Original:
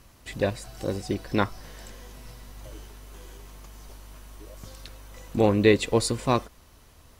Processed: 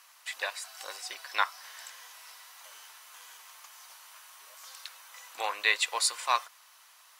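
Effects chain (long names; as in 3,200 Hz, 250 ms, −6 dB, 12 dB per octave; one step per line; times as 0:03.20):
high-pass filter 930 Hz 24 dB per octave
level +2.5 dB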